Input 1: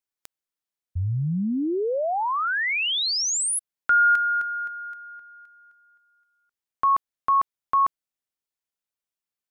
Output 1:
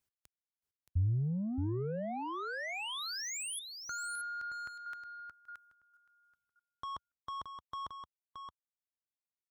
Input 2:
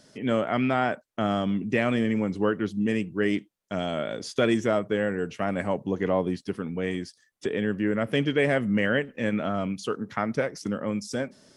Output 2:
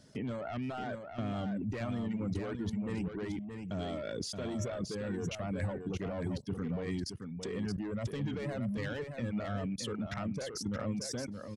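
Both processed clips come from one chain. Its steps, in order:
soft clipping −24 dBFS
reverb reduction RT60 1.1 s
output level in coarse steps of 23 dB
parametric band 75 Hz +13 dB 2.5 octaves
single-tap delay 623 ms −6.5 dB
level +5.5 dB

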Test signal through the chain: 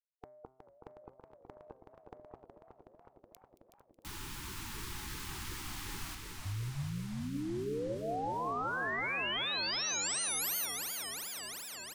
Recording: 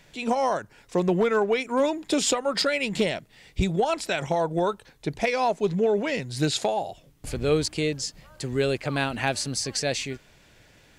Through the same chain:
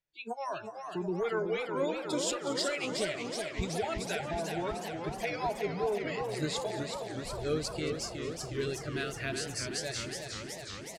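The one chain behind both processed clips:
noise reduction from a noise print of the clip's start 29 dB
parametric band 210 Hz −4.5 dB 0.59 octaves
hum removal 130.3 Hz, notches 17
echo with shifted repeats 224 ms, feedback 62%, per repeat +42 Hz, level −16 dB
feedback echo with a swinging delay time 370 ms, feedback 78%, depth 141 cents, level −6 dB
level −9 dB

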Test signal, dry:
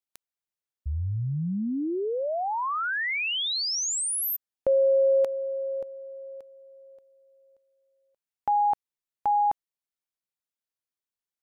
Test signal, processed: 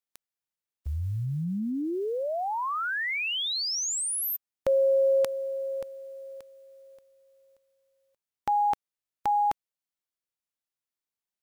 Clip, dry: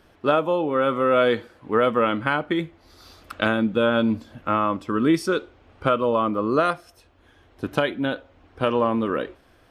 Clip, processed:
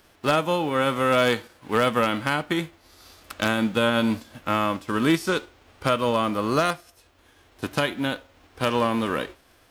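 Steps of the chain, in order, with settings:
spectral envelope flattened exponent 0.6
wave folding −9.5 dBFS
level −1.5 dB

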